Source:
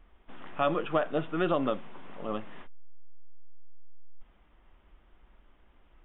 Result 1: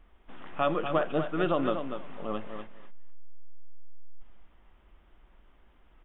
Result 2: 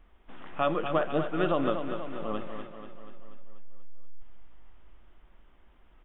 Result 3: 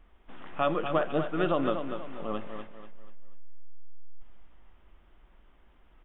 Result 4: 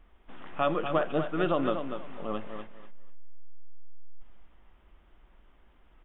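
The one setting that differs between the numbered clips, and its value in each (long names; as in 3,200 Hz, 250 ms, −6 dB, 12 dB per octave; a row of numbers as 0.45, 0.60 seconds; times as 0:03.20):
repeating echo, feedback: 15, 59, 38, 22%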